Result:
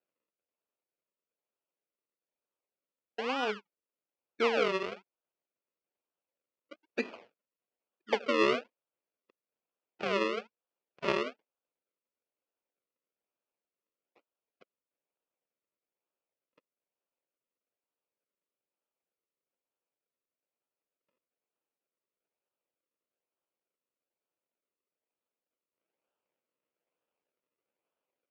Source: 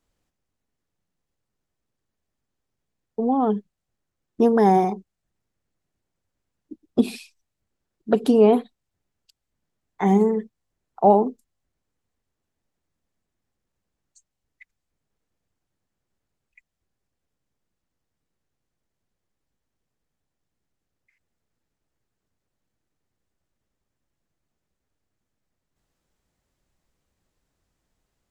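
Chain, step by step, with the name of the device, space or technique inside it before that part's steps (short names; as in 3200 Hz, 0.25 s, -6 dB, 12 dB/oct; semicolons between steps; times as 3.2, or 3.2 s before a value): circuit-bent sampling toy (decimation with a swept rate 39×, swing 100% 1.1 Hz; speaker cabinet 510–4200 Hz, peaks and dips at 520 Hz +3 dB, 780 Hz -4 dB, 1100 Hz -3 dB, 1800 Hz -5 dB, 2500 Hz +4 dB, 3800 Hz -7 dB); gain -6 dB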